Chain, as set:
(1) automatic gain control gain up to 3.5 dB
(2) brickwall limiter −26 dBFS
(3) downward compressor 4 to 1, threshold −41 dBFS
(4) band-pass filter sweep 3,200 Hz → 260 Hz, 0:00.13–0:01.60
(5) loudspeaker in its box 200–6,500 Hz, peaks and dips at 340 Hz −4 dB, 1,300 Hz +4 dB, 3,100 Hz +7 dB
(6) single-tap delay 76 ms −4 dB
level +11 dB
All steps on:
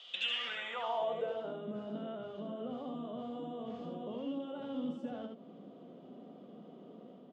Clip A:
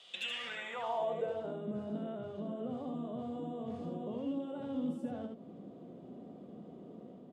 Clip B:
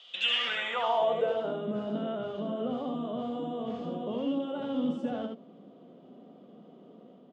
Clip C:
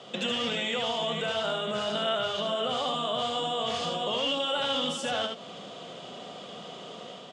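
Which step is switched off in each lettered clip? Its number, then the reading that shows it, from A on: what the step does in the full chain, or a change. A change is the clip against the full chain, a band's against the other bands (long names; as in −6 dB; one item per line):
5, 125 Hz band +5.5 dB
3, average gain reduction 5.5 dB
4, 250 Hz band −6.5 dB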